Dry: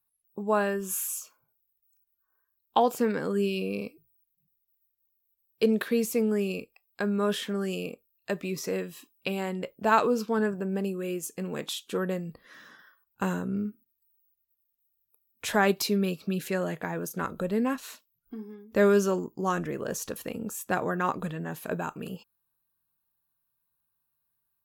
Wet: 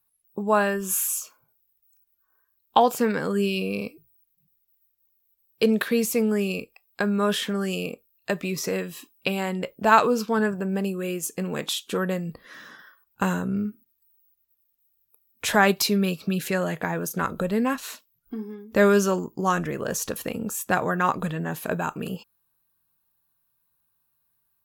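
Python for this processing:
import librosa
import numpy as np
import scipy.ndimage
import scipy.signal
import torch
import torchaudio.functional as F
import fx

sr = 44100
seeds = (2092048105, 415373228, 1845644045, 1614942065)

y = fx.dynamic_eq(x, sr, hz=340.0, q=0.91, threshold_db=-36.0, ratio=4.0, max_db=-5)
y = F.gain(torch.from_numpy(y), 6.5).numpy()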